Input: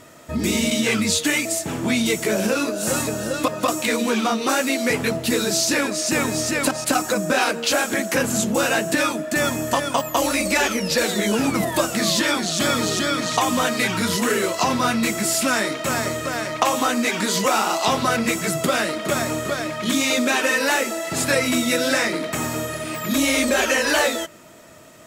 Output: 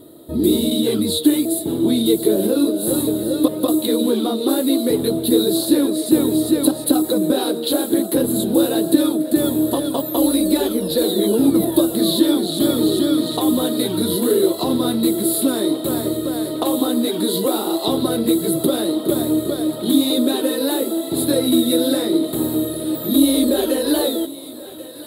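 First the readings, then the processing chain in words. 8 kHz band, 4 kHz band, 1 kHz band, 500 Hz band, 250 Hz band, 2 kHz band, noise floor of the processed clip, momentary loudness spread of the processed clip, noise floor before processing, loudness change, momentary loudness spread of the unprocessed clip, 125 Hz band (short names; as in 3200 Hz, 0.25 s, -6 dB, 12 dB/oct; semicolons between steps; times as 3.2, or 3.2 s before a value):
-2.5 dB, 0.0 dB, -7.0 dB, +3.5 dB, +7.5 dB, -16.0 dB, -29 dBFS, 5 LU, -32 dBFS, +2.5 dB, 5 LU, 0.0 dB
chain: EQ curve 220 Hz 0 dB, 320 Hz +13 dB, 630 Hz -2 dB, 2500 Hz -21 dB, 3900 Hz +6 dB, 5900 Hz -27 dB, 10000 Hz +7 dB; on a send: thinning echo 1.088 s, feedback 79%, high-pass 300 Hz, level -17 dB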